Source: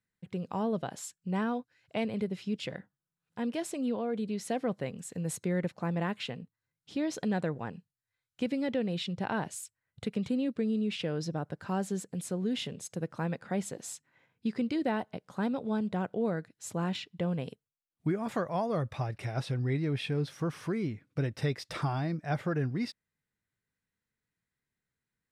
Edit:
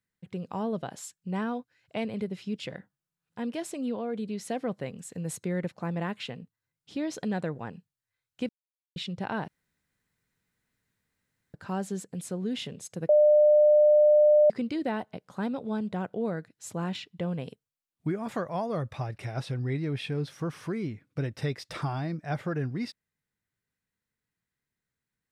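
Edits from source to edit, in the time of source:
8.49–8.96 s: mute
9.48–11.54 s: room tone
13.09–14.50 s: bleep 600 Hz -15.5 dBFS

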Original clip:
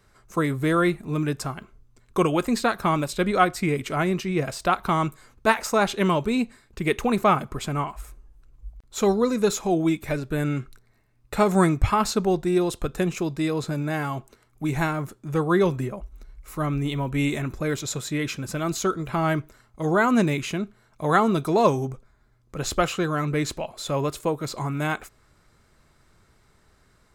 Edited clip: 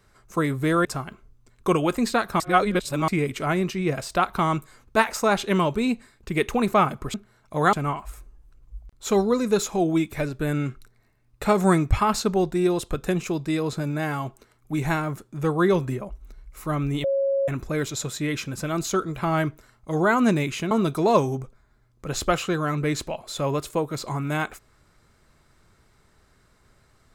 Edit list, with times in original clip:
0.85–1.35 s: delete
2.90–3.58 s: reverse
16.95–17.39 s: bleep 549 Hz -19.5 dBFS
20.62–21.21 s: move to 7.64 s

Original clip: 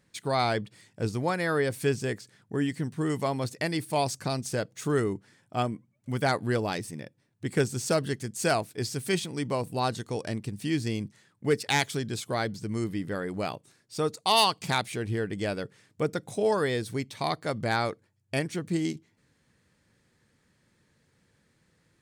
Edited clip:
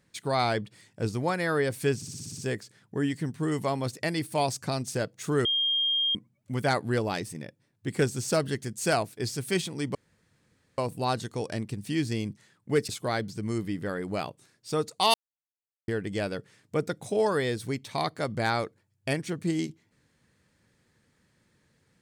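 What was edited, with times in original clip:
1.96 s: stutter 0.06 s, 8 plays
5.03–5.73 s: bleep 3.22 kHz -23 dBFS
9.53 s: insert room tone 0.83 s
11.64–12.15 s: delete
14.40–15.14 s: mute

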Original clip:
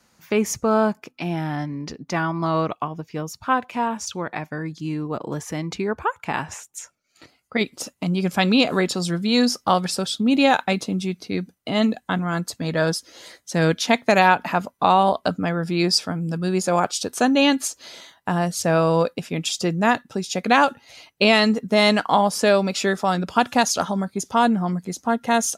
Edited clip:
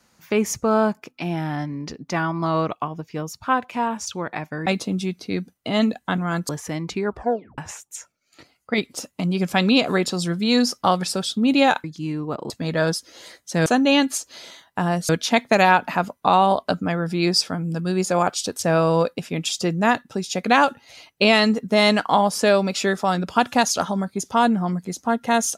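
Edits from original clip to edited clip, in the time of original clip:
4.66–5.32 s: swap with 10.67–12.50 s
5.89 s: tape stop 0.52 s
17.16–18.59 s: move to 13.66 s

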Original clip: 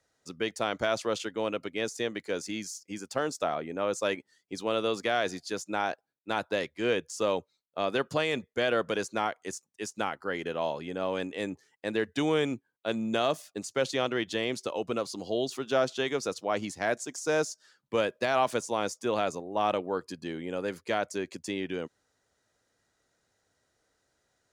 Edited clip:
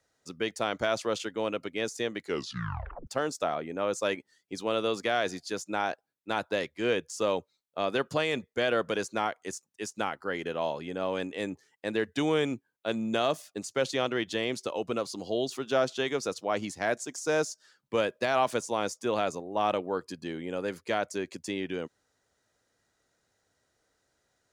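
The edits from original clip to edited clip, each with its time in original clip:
2.23 s: tape stop 0.84 s

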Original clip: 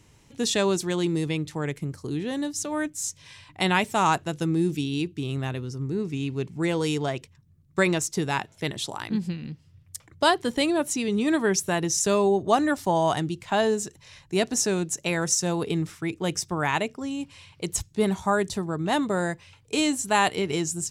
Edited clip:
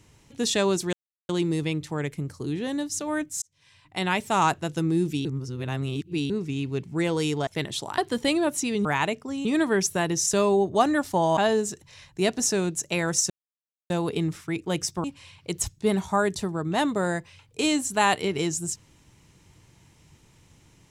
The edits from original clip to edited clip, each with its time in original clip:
0.93 s: insert silence 0.36 s
3.06–4.03 s: fade in
4.89–5.94 s: reverse
7.11–8.53 s: delete
9.04–10.31 s: delete
13.10–13.51 s: delete
15.44 s: insert silence 0.60 s
16.58–17.18 s: move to 11.18 s

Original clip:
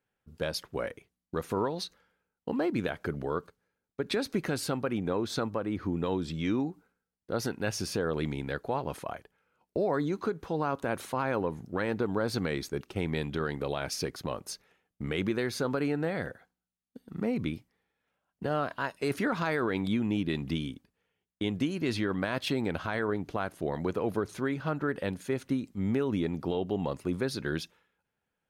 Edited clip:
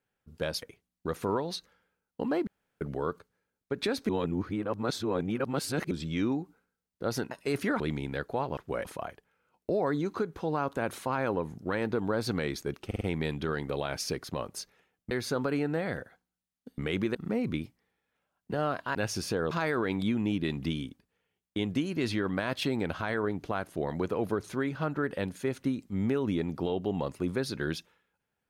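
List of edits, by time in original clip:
0.62–0.90 s: move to 8.92 s
2.75–3.09 s: room tone
4.37–6.19 s: reverse
7.59–8.15 s: swap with 18.87–19.36 s
12.93 s: stutter 0.05 s, 4 plays
15.03–15.40 s: move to 17.07 s

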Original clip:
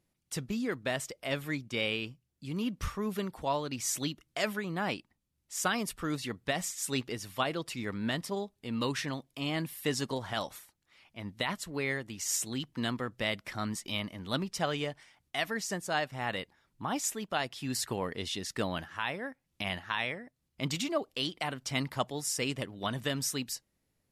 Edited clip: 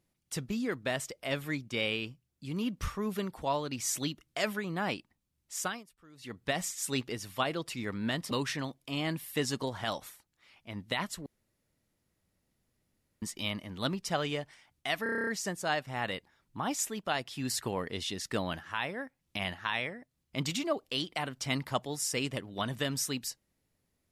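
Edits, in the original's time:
5.54–6.45 s: dip -23.5 dB, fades 0.30 s
8.31–8.80 s: delete
11.75–13.71 s: room tone
15.52 s: stutter 0.03 s, 9 plays

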